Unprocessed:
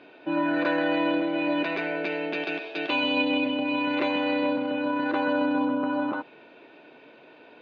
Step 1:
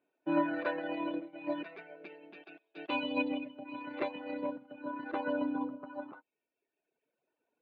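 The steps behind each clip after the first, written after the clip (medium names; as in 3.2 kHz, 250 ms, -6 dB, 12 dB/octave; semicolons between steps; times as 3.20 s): reverb removal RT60 1.9 s; low-pass 1.8 kHz 6 dB/octave; upward expansion 2.5:1, over -44 dBFS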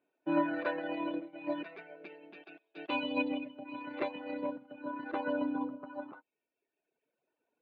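no audible change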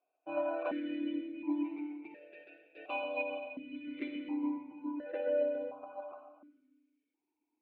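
reverberation RT60 1.4 s, pre-delay 46 ms, DRR 4 dB; stepped vowel filter 1.4 Hz; trim +7 dB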